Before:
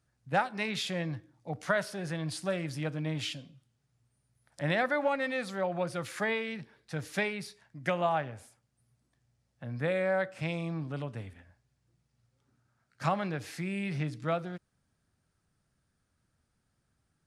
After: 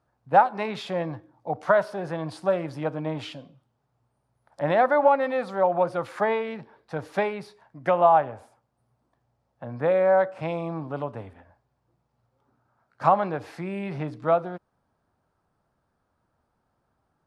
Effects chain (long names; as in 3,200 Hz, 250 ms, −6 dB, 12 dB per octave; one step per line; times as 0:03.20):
drawn EQ curve 150 Hz 0 dB, 940 Hz +14 dB, 1,900 Hz −1 dB, 4,400 Hz −4 dB, 6,800 Hz −9 dB